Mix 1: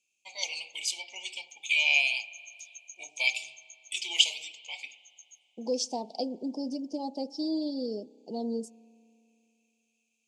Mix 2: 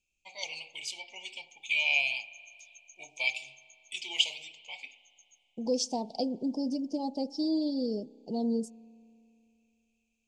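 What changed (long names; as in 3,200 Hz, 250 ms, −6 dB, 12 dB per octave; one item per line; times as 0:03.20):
first voice: add high-shelf EQ 4,200 Hz −11.5 dB
master: remove high-pass filter 260 Hz 12 dB per octave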